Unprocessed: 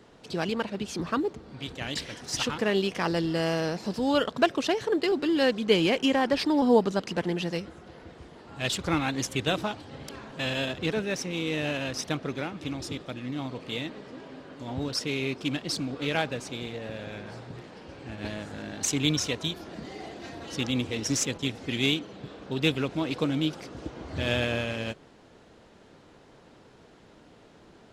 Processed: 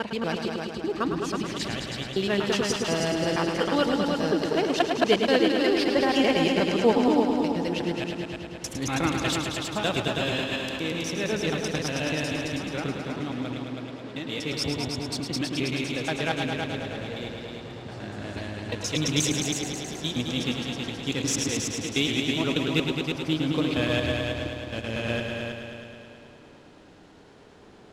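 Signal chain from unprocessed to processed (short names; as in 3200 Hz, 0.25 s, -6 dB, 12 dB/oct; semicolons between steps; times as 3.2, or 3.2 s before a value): slices in reverse order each 0.12 s, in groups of 6; multi-head echo 0.107 s, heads all three, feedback 56%, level -8 dB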